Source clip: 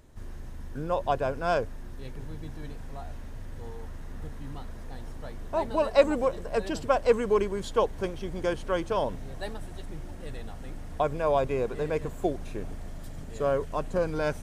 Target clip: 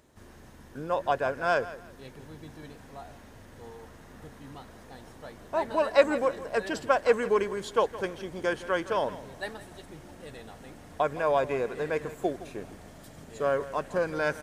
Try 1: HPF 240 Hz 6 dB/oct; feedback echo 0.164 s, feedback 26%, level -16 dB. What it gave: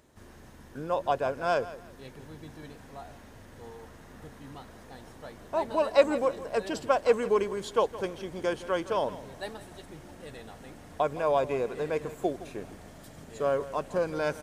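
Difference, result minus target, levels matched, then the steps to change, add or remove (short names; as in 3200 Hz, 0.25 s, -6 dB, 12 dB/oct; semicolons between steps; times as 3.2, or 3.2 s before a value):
2000 Hz band -4.5 dB
add after HPF: dynamic EQ 1700 Hz, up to +7 dB, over -49 dBFS, Q 2.2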